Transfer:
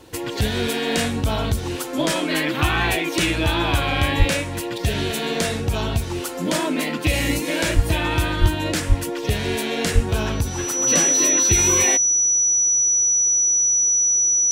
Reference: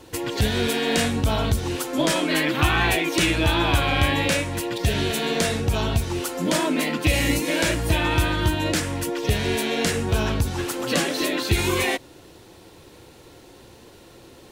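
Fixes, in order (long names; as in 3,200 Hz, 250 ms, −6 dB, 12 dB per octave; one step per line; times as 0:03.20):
notch filter 5,900 Hz, Q 30
high-pass at the plosives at 0:04.18/0:07.75/0:08.40/0:08.88/0:09.94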